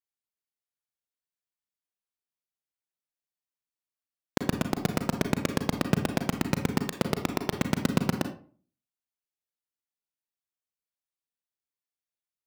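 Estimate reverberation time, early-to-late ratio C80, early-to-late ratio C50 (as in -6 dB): 0.45 s, 14.0 dB, 9.0 dB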